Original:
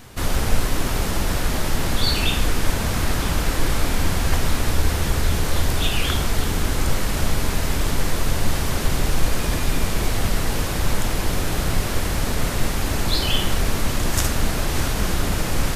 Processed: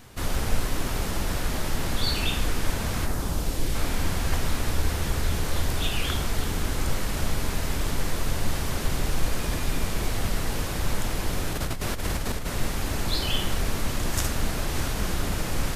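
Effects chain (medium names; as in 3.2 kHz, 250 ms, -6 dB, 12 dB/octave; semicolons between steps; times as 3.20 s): 3.05–3.74 s: peaking EQ 3.5 kHz -> 1.1 kHz -8.5 dB 1.6 oct; 11.53–12.48 s: compressor with a negative ratio -22 dBFS, ratio -1; 14.40–14.90 s: crackle 110 per s -> 21 per s -46 dBFS; trim -5.5 dB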